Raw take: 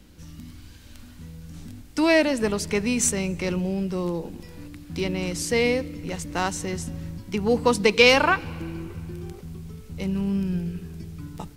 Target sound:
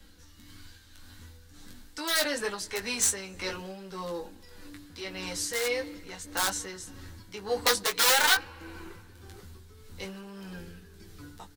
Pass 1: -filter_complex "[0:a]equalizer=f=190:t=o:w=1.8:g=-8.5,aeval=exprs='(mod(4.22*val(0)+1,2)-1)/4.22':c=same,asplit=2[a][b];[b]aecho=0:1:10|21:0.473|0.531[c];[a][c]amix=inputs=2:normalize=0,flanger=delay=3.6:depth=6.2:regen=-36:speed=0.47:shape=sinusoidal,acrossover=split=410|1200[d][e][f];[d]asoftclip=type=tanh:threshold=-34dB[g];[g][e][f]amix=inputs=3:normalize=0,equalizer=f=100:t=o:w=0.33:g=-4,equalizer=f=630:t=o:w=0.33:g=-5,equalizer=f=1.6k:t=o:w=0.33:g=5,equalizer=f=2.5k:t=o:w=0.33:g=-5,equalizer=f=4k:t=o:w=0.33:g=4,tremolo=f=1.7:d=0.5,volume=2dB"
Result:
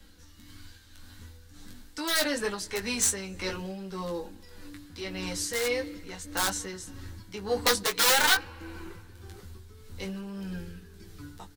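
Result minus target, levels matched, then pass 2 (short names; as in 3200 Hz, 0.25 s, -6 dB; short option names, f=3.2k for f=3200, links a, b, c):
soft clip: distortion -6 dB
-filter_complex "[0:a]equalizer=f=190:t=o:w=1.8:g=-8.5,aeval=exprs='(mod(4.22*val(0)+1,2)-1)/4.22':c=same,asplit=2[a][b];[b]aecho=0:1:10|21:0.473|0.531[c];[a][c]amix=inputs=2:normalize=0,flanger=delay=3.6:depth=6.2:regen=-36:speed=0.47:shape=sinusoidal,acrossover=split=410|1200[d][e][f];[d]asoftclip=type=tanh:threshold=-43dB[g];[g][e][f]amix=inputs=3:normalize=0,equalizer=f=100:t=o:w=0.33:g=-4,equalizer=f=630:t=o:w=0.33:g=-5,equalizer=f=1.6k:t=o:w=0.33:g=5,equalizer=f=2.5k:t=o:w=0.33:g=-5,equalizer=f=4k:t=o:w=0.33:g=4,tremolo=f=1.7:d=0.5,volume=2dB"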